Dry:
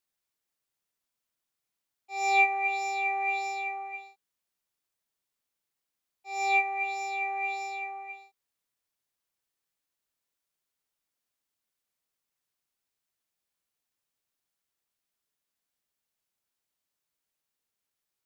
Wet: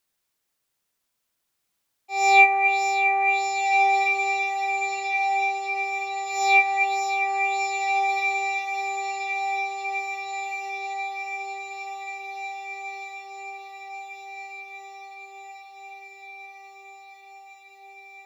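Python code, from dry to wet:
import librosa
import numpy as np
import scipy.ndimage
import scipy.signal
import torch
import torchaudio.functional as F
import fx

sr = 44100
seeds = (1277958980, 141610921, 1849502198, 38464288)

y = fx.echo_diffused(x, sr, ms=1574, feedback_pct=66, wet_db=-4)
y = F.gain(torch.from_numpy(y), 8.0).numpy()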